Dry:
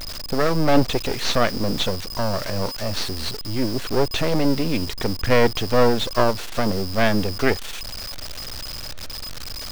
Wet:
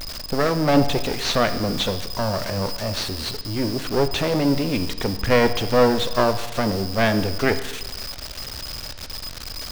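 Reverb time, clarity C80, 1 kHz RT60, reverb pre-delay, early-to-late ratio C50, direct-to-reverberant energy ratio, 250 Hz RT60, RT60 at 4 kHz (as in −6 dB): 1.2 s, 14.0 dB, 1.2 s, 15 ms, 12.5 dB, 10.0 dB, 1.2 s, 1.2 s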